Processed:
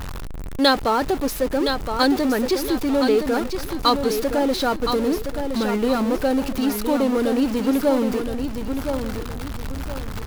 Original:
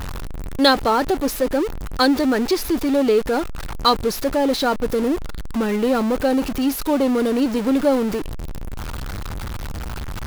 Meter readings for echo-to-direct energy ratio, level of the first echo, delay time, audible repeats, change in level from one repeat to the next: −6.5 dB, −7.0 dB, 1,017 ms, 3, −9.5 dB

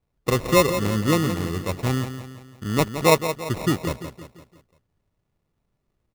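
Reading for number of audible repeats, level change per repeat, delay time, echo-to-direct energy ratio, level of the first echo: 4, −6.5 dB, 171 ms, −9.0 dB, −10.0 dB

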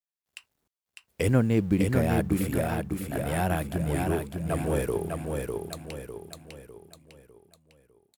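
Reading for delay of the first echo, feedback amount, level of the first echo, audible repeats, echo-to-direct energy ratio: 602 ms, 43%, −4.0 dB, 5, −3.0 dB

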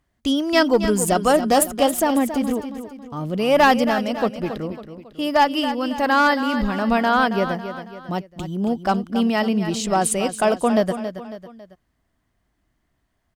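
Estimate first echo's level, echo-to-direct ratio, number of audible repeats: −10.5 dB, −9.5 dB, 3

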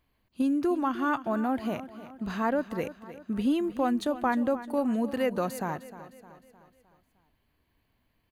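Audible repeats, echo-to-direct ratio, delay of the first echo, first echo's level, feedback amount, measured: 4, −13.5 dB, 307 ms, −14.5 dB, 49%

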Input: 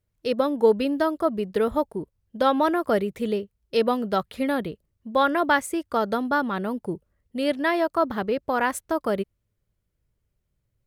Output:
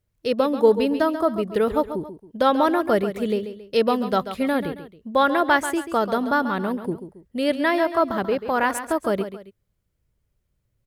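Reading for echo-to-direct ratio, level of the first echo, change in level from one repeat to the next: −10.5 dB, −11.0 dB, −8.5 dB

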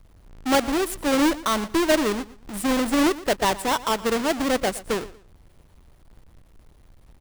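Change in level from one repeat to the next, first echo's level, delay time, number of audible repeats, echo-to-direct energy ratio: −11.5 dB, −18.0 dB, 118 ms, 2, −17.5 dB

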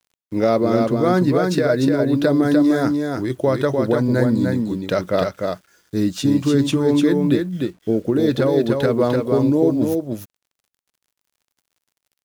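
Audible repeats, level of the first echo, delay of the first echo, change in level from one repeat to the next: 1, −4.0 dB, 299 ms, repeats not evenly spaced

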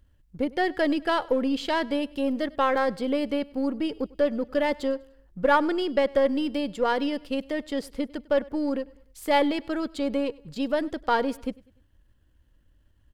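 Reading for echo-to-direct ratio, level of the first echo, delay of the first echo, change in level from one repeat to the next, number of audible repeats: −22.0 dB, −23.0 dB, 99 ms, −7.0 dB, 2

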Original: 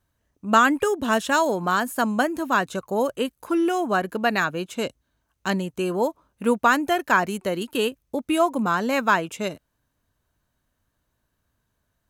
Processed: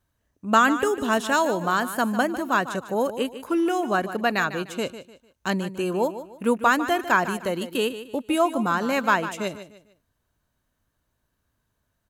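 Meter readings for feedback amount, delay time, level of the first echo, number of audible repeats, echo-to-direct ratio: 32%, 150 ms, −12.5 dB, 3, −12.0 dB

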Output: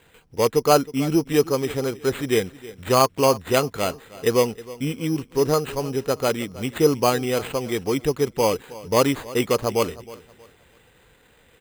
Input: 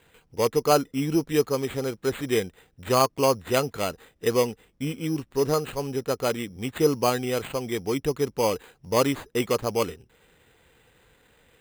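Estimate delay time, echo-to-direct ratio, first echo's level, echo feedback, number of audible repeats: 316 ms, −18.0 dB, −18.5 dB, 30%, 2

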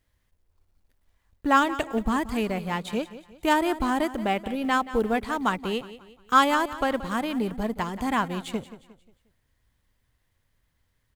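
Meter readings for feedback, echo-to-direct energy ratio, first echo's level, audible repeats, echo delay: 39%, −14.5 dB, −15.0 dB, 3, 178 ms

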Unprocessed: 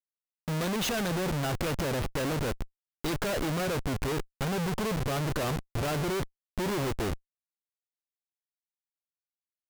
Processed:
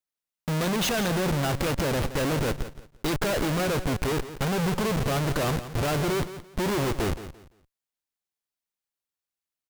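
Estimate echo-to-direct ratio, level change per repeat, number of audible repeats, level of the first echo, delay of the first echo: −12.5 dB, −12.0 dB, 2, −13.0 dB, 171 ms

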